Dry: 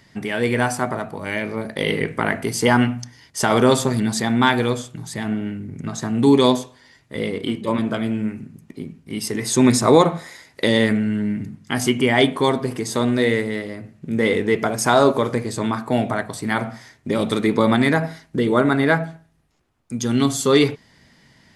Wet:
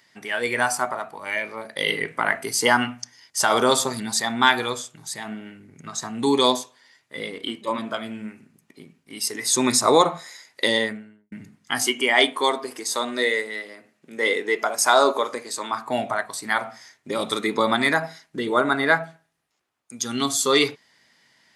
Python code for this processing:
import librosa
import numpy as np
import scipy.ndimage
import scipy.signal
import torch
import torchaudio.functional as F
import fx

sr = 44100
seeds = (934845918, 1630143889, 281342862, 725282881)

y = fx.studio_fade_out(x, sr, start_s=10.65, length_s=0.67)
y = fx.highpass(y, sr, hz=230.0, slope=12, at=(11.82, 15.73))
y = fx.highpass(y, sr, hz=930.0, slope=6)
y = fx.noise_reduce_blind(y, sr, reduce_db=6)
y = F.gain(torch.from_numpy(y), 3.0).numpy()